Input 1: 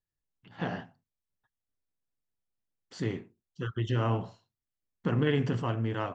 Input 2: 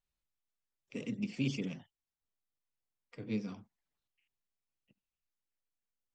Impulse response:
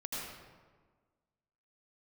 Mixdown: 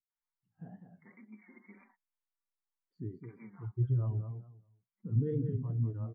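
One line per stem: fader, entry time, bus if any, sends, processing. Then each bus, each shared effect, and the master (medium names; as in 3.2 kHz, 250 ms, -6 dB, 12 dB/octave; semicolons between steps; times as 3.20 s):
+2.0 dB, 0.00 s, no send, echo send -7.5 dB, peak limiter -21.5 dBFS, peak gain reduction 6.5 dB; upward compressor, threshold -41 dBFS; spectral contrast expander 2.5:1
-8.5 dB, 0.10 s, no send, no echo send, FFT band-pass 190–2300 Hz; resonant low shelf 720 Hz -9.5 dB, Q 3; comb 5.4 ms, depth 70%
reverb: none
echo: feedback delay 203 ms, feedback 20%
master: wow and flutter 91 cents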